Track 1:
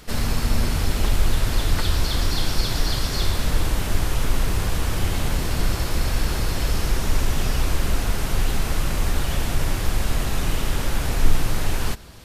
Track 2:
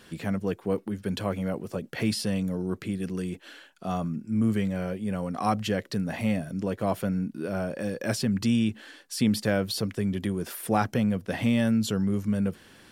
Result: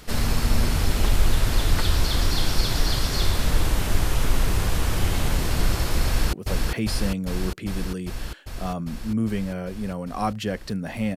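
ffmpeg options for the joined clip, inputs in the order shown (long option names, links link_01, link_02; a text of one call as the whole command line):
ffmpeg -i cue0.wav -i cue1.wav -filter_complex "[0:a]apad=whole_dur=11.16,atrim=end=11.16,atrim=end=6.332[link_01];[1:a]atrim=start=1.568:end=6.4[link_02];[link_01][link_02]acrossfade=duration=0.004:curve1=hsin:curve2=hsin,asplit=2[link_03][link_04];[link_04]afade=type=in:start_time=6.06:duration=0.01,afade=type=out:start_time=6.33:duration=0.01,aecho=0:1:400|800|1200|1600|2000|2400|2800|3200|3600|4000|4400|4800:0.749894|0.599915|0.479932|0.383946|0.307157|0.245725|0.19658|0.157264|0.125811|0.100649|0.0805193|0.0644154[link_05];[link_03][link_05]amix=inputs=2:normalize=0" out.wav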